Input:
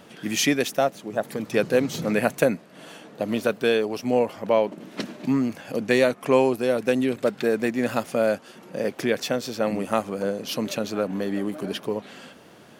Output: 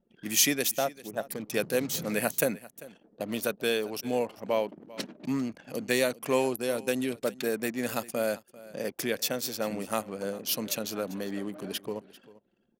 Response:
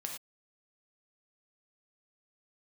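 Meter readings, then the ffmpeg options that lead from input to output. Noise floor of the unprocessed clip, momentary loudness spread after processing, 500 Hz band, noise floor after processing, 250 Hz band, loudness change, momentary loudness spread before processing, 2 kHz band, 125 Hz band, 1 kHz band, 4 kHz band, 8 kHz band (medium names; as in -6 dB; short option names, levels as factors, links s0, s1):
-49 dBFS, 11 LU, -7.5 dB, -70 dBFS, -8.0 dB, -5.5 dB, 10 LU, -5.0 dB, -8.0 dB, -7.0 dB, -1.5 dB, +3.5 dB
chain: -af "anlmdn=1,aemphasis=mode=production:type=75fm,aecho=1:1:394:0.106,volume=0.447"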